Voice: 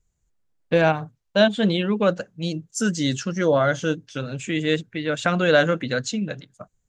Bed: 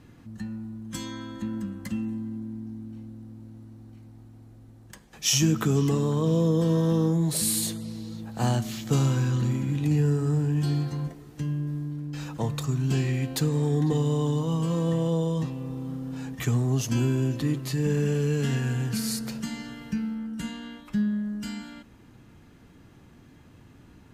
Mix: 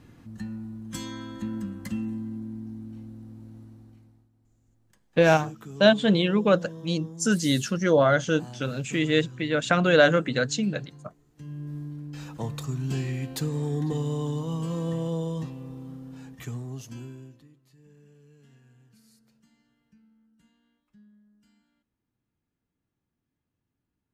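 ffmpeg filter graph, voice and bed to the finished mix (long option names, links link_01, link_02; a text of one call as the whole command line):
ffmpeg -i stem1.wav -i stem2.wav -filter_complex "[0:a]adelay=4450,volume=-0.5dB[link_01];[1:a]volume=13.5dB,afade=type=out:start_time=3.6:duration=0.69:silence=0.133352,afade=type=in:start_time=11.32:duration=0.45:silence=0.199526,afade=type=out:start_time=15.3:duration=2.19:silence=0.0446684[link_02];[link_01][link_02]amix=inputs=2:normalize=0" out.wav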